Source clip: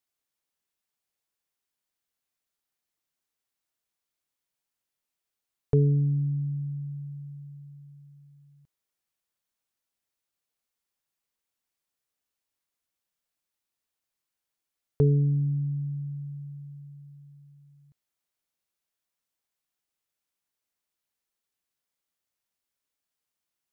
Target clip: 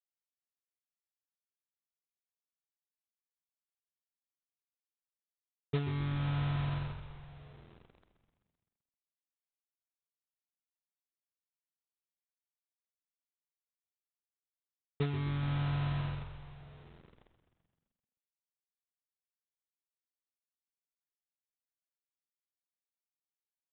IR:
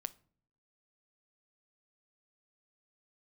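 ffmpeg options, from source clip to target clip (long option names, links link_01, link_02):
-filter_complex "[0:a]aeval=exprs='val(0)+0.00224*(sin(2*PI*60*n/s)+sin(2*PI*2*60*n/s)/2+sin(2*PI*3*60*n/s)/3+sin(2*PI*4*60*n/s)/4+sin(2*PI*5*60*n/s)/5)':channel_layout=same,adynamicequalizer=threshold=0.00562:dfrequency=260:dqfactor=1.2:tfrequency=260:tqfactor=1.2:attack=5:release=100:ratio=0.375:range=3:mode=boostabove:tftype=bell,acompressor=threshold=-33dB:ratio=12,aresample=8000,acrusher=bits=6:mix=0:aa=0.000001,aresample=44100,agate=range=-20dB:threshold=-34dB:ratio=16:detection=peak,asplit=2[link_01][link_02];[link_02]asplit=7[link_03][link_04][link_05][link_06][link_07][link_08][link_09];[link_03]adelay=129,afreqshift=-44,volume=-11dB[link_10];[link_04]adelay=258,afreqshift=-88,volume=-15.2dB[link_11];[link_05]adelay=387,afreqshift=-132,volume=-19.3dB[link_12];[link_06]adelay=516,afreqshift=-176,volume=-23.5dB[link_13];[link_07]adelay=645,afreqshift=-220,volume=-27.6dB[link_14];[link_08]adelay=774,afreqshift=-264,volume=-31.8dB[link_15];[link_09]adelay=903,afreqshift=-308,volume=-35.9dB[link_16];[link_10][link_11][link_12][link_13][link_14][link_15][link_16]amix=inputs=7:normalize=0[link_17];[link_01][link_17]amix=inputs=2:normalize=0,volume=5dB"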